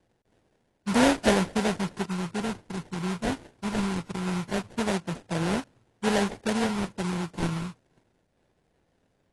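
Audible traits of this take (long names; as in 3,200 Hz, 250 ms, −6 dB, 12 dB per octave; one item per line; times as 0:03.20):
phaser sweep stages 4, 0.22 Hz, lowest notch 520–1,300 Hz
aliases and images of a low sample rate 1,200 Hz, jitter 20%
AAC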